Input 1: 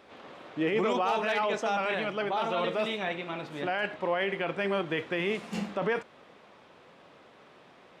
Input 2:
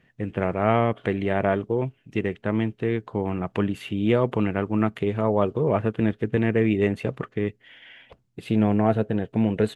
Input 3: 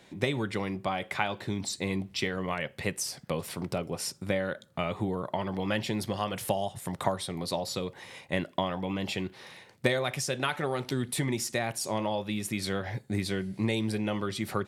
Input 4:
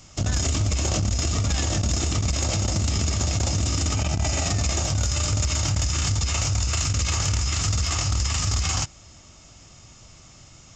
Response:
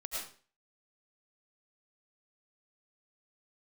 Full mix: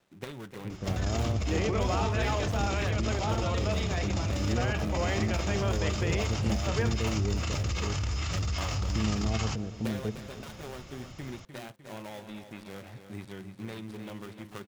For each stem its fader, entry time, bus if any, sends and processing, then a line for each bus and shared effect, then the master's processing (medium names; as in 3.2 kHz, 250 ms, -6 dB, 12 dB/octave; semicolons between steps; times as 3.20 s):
-4.5 dB, 0.90 s, no send, no echo send, none
-18.5 dB, 0.45 s, no send, echo send -14.5 dB, tilt EQ -3.5 dB/octave
-11.0 dB, 0.00 s, no send, echo send -9.5 dB, dead-time distortion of 0.27 ms
+1.5 dB, 0.70 s, no send, no echo send, low-pass 4 kHz 12 dB/octave; peak limiter -26 dBFS, peak gain reduction 10 dB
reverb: none
echo: feedback delay 302 ms, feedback 50%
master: none